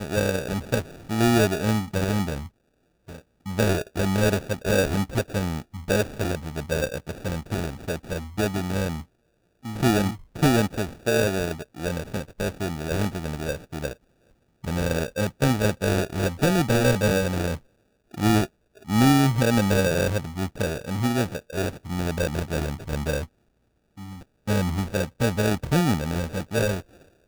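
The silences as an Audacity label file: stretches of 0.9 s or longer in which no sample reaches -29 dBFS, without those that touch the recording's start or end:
2.460000	3.460000	silence
23.240000	24.480000	silence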